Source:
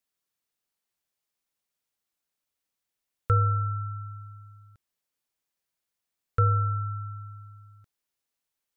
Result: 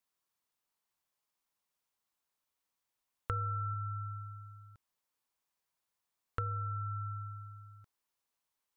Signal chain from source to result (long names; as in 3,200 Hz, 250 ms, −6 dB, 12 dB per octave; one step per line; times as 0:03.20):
parametric band 1,000 Hz +7.5 dB 0.69 octaves
downward compressor 6 to 1, threshold −32 dBFS, peak gain reduction 14 dB
0:03.31–0:03.74: double-tracking delay 12 ms −10 dB
level −2.5 dB